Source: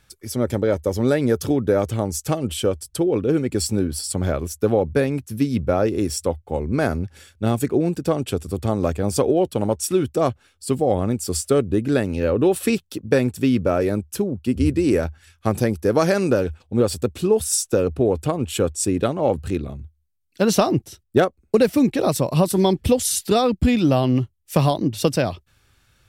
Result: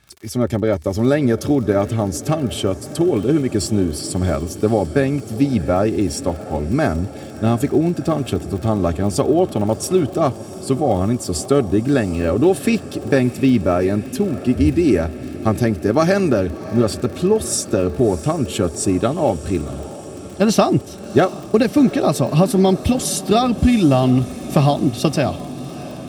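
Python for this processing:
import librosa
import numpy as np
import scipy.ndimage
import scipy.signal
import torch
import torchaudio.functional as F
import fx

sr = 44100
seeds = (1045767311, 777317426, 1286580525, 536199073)

y = fx.high_shelf(x, sr, hz=11000.0, db=-10.0)
y = fx.dmg_crackle(y, sr, seeds[0], per_s=50.0, level_db=-31.0)
y = fx.notch_comb(y, sr, f0_hz=490.0)
y = fx.echo_diffused(y, sr, ms=693, feedback_pct=71, wet_db=-16.0)
y = F.gain(torch.from_numpy(y), 4.0).numpy()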